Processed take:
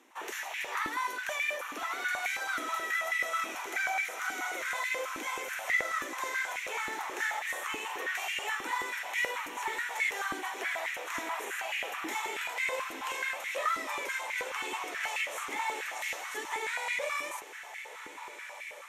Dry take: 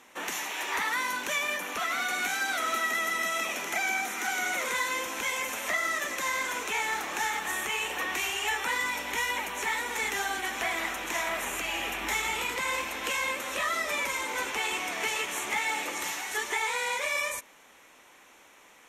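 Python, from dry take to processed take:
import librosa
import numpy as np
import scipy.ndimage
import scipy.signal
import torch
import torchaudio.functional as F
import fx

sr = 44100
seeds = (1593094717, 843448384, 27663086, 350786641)

y = fx.echo_diffused(x, sr, ms=1392, feedback_pct=62, wet_db=-11.5)
y = fx.filter_held_highpass(y, sr, hz=9.3, low_hz=300.0, high_hz=2100.0)
y = y * 10.0 ** (-8.5 / 20.0)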